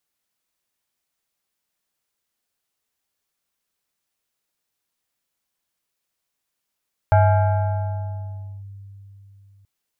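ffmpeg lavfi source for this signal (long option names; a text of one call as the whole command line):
ffmpeg -f lavfi -i "aevalsrc='0.316*pow(10,-3*t/3.74)*sin(2*PI*99*t+0.96*clip(1-t/1.52,0,1)*sin(2*PI*7.5*99*t))':duration=2.53:sample_rate=44100" out.wav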